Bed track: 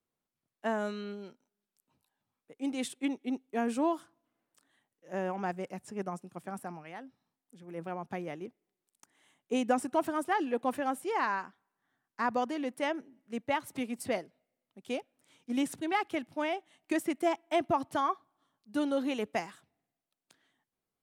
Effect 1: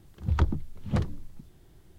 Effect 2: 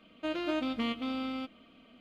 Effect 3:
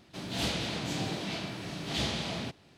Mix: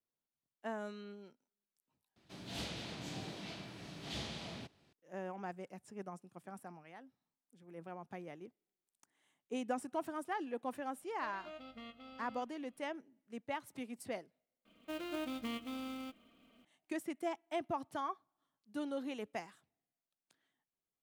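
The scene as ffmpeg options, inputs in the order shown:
-filter_complex "[2:a]asplit=2[s0][s1];[0:a]volume=0.335[s2];[s0]aecho=1:1:1.5:0.67[s3];[s1]acrusher=bits=4:mode=log:mix=0:aa=0.000001[s4];[s2]asplit=3[s5][s6][s7];[s5]atrim=end=2.164[s8];[3:a]atrim=end=2.77,asetpts=PTS-STARTPTS,volume=0.282[s9];[s6]atrim=start=4.926:end=14.654[s10];[s4]atrim=end=2,asetpts=PTS-STARTPTS,volume=0.376[s11];[s7]atrim=start=16.646[s12];[s3]atrim=end=2,asetpts=PTS-STARTPTS,volume=0.126,afade=t=in:d=0.004:c=hsin,afade=t=out:st=1.996:d=0.004:c=hsin,adelay=484218S[s13];[s8][s9]acrossfade=d=0.004:c1=hsin:c2=hsin[s14];[s14][s10]acrossfade=d=0.004:c1=hsin:c2=hsin[s15];[s15][s11]acrossfade=d=0.004:c1=hsin:c2=hsin[s16];[s16][s12]acrossfade=d=0.004:c1=hsin:c2=hsin[s17];[s17][s13]amix=inputs=2:normalize=0"

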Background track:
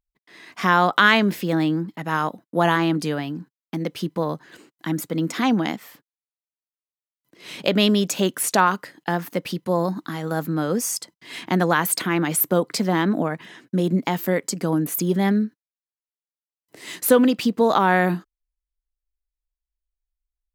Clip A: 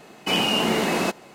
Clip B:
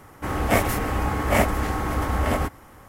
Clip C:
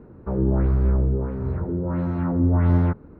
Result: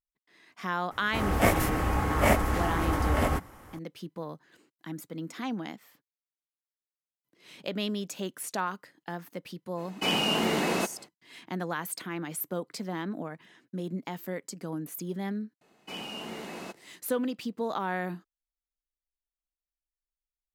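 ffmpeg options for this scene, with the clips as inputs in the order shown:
-filter_complex "[1:a]asplit=2[s0][s1];[0:a]volume=0.2[s2];[2:a]atrim=end=2.88,asetpts=PTS-STARTPTS,volume=0.708,afade=t=in:d=0.004:c=hsin,afade=t=out:st=2.876:d=0.004:c=hsin,adelay=910[s3];[s0]atrim=end=1.34,asetpts=PTS-STARTPTS,volume=0.562,afade=t=in:d=0.05,afade=t=out:st=1.29:d=0.05,adelay=9750[s4];[s1]atrim=end=1.34,asetpts=PTS-STARTPTS,volume=0.133,afade=t=in:d=0.004:c=hsin,afade=t=out:st=1.336:d=0.004:c=hsin,adelay=15610[s5];[s2][s3][s4][s5]amix=inputs=4:normalize=0"

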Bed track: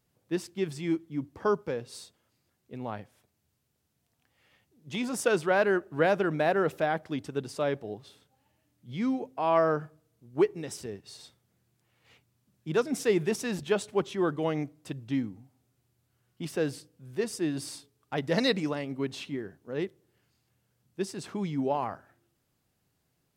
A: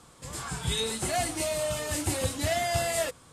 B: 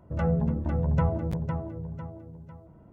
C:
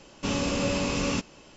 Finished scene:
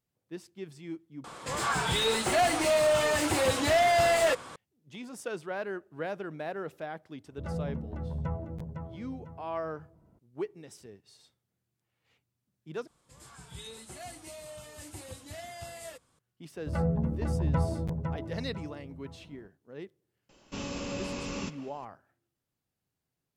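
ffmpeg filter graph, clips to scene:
-filter_complex "[1:a]asplit=2[s0][s1];[2:a]asplit=2[s2][s3];[0:a]volume=0.282[s4];[s0]asplit=2[s5][s6];[s6]highpass=f=720:p=1,volume=14.1,asoftclip=type=tanh:threshold=0.211[s7];[s5][s7]amix=inputs=2:normalize=0,lowpass=f=1700:p=1,volume=0.501[s8];[3:a]asplit=2[s9][s10];[s10]adelay=200,highpass=300,lowpass=3400,asoftclip=type=hard:threshold=0.0562,volume=0.2[s11];[s9][s11]amix=inputs=2:normalize=0[s12];[s4]asplit=3[s13][s14][s15];[s13]atrim=end=1.244[s16];[s8]atrim=end=3.32,asetpts=PTS-STARTPTS,volume=0.891[s17];[s14]atrim=start=4.556:end=12.874[s18];[s1]atrim=end=3.32,asetpts=PTS-STARTPTS,volume=0.168[s19];[s15]atrim=start=16.186[s20];[s2]atrim=end=2.92,asetpts=PTS-STARTPTS,volume=0.335,afade=t=in:d=0.004:c=hsin,afade=t=out:st=2.916:d=0.004:c=hsin,adelay=7270[s21];[s3]atrim=end=2.92,asetpts=PTS-STARTPTS,volume=0.708,afade=t=in:d=0.004:c=hsin,afade=t=out:st=2.916:d=0.004:c=hsin,adelay=16560[s22];[s12]atrim=end=1.56,asetpts=PTS-STARTPTS,volume=0.335,afade=t=in:d=0.004:c=hsin,afade=t=out:st=1.556:d=0.004:c=hsin,adelay=20290[s23];[s16][s17]acrossfade=d=0.004:c1=hsin:c2=hsin[s24];[s24][s18]acrossfade=d=0.004:c1=hsin:c2=hsin[s25];[s25][s19]acrossfade=d=0.004:c1=hsin:c2=hsin[s26];[s26][s20]acrossfade=d=0.004:c1=hsin:c2=hsin[s27];[s27][s21][s22][s23]amix=inputs=4:normalize=0"

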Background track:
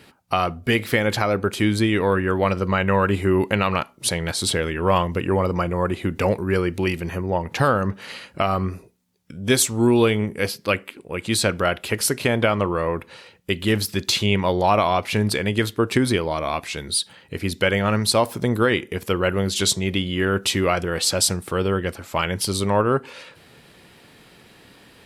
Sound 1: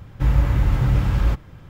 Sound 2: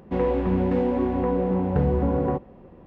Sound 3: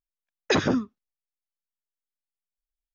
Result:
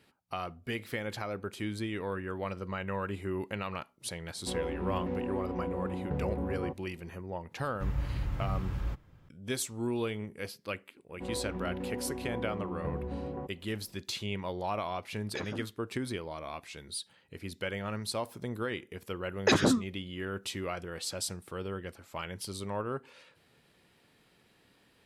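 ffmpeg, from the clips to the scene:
-filter_complex "[2:a]asplit=2[s0][s1];[3:a]asplit=2[s2][s3];[0:a]volume=0.158[s4];[s0]atrim=end=2.86,asetpts=PTS-STARTPTS,volume=0.237,afade=t=in:d=0.004:c=hsin,afade=t=out:st=2.856:d=0.004:c=hsin,adelay=4350[s5];[1:a]atrim=end=1.69,asetpts=PTS-STARTPTS,volume=0.168,afade=t=in:d=0.004:c=hsin,afade=t=out:st=1.686:d=0.004:c=hsin,adelay=7600[s6];[s1]atrim=end=2.86,asetpts=PTS-STARTPTS,volume=0.178,afade=t=in:d=0.004:c=hsin,afade=t=out:st=2.856:d=0.004:c=hsin,adelay=11090[s7];[s2]atrim=end=2.94,asetpts=PTS-STARTPTS,volume=0.126,afade=t=in:d=0.004:c=hsin,afade=t=out:st=2.936:d=0.004:c=hsin,adelay=14850[s8];[s3]atrim=end=2.94,asetpts=PTS-STARTPTS,volume=0.794,afade=t=in:d=0.004:c=hsin,afade=t=out:st=2.936:d=0.004:c=hsin,adelay=18970[s9];[s4][s5][s6][s7][s8][s9]amix=inputs=6:normalize=0"

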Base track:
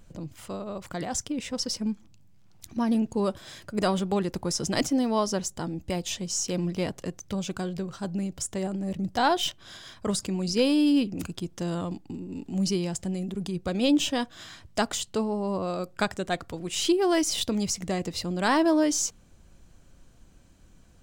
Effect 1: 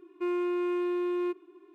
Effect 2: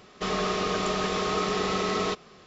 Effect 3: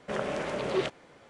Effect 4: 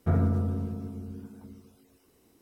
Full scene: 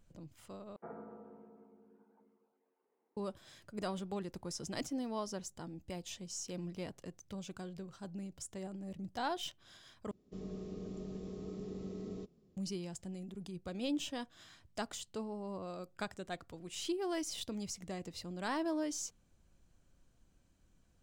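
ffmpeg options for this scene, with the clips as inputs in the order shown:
-filter_complex "[0:a]volume=0.2[s0];[4:a]highpass=f=240:w=0.5412,highpass=f=240:w=1.3066,equalizer=f=290:t=q:w=4:g=-9,equalizer=f=460:t=q:w=4:g=5,equalizer=f=870:t=q:w=4:g=10,lowpass=f=2100:w=0.5412,lowpass=f=2100:w=1.3066[s1];[2:a]firequalizer=gain_entry='entry(260,0);entry(700,-18);entry(1200,-28);entry(7200,-16)':delay=0.05:min_phase=1[s2];[s0]asplit=3[s3][s4][s5];[s3]atrim=end=0.764[s6];[s1]atrim=end=2.41,asetpts=PTS-STARTPTS,volume=0.15[s7];[s4]atrim=start=3.166:end=10.114[s8];[s2]atrim=end=2.46,asetpts=PTS-STARTPTS,volume=0.299[s9];[s5]atrim=start=12.566[s10];[s6][s7]acrossfade=d=0.004:c1=hsin:c2=hsin[s11];[s11][s8]acrossfade=d=0.004:c1=hsin:c2=hsin[s12];[s12][s9]acrossfade=d=0.004:c1=hsin:c2=hsin[s13];[s13][s10]acrossfade=d=0.004:c1=hsin:c2=hsin"

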